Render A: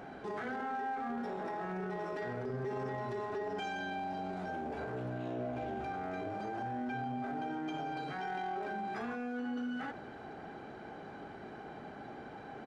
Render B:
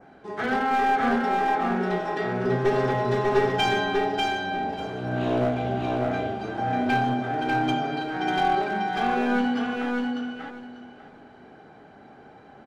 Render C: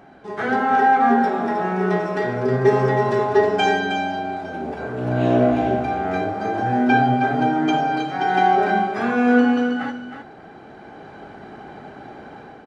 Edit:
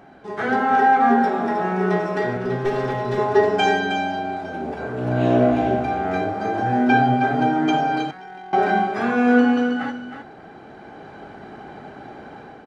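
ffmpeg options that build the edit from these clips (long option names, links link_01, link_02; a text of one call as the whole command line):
ffmpeg -i take0.wav -i take1.wav -i take2.wav -filter_complex "[2:a]asplit=3[link_01][link_02][link_03];[link_01]atrim=end=2.372[link_04];[1:a]atrim=start=2.368:end=3.182[link_05];[link_02]atrim=start=3.178:end=8.112[link_06];[0:a]atrim=start=8.108:end=8.532[link_07];[link_03]atrim=start=8.528[link_08];[link_04][link_05]acrossfade=duration=0.004:curve1=hsin:curve2=hsin[link_09];[link_09][link_06]acrossfade=duration=0.004:curve1=hsin:curve2=hsin[link_10];[link_10][link_07]acrossfade=duration=0.004:curve1=hsin:curve2=hsin[link_11];[link_11][link_08]acrossfade=duration=0.004:curve1=hsin:curve2=hsin" out.wav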